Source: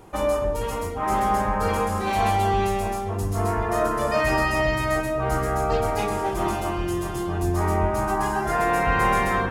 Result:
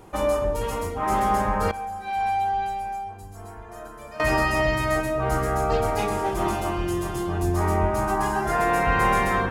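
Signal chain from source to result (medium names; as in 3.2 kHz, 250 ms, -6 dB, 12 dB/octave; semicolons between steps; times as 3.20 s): 1.71–4.20 s: feedback comb 790 Hz, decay 0.15 s, harmonics all, mix 90%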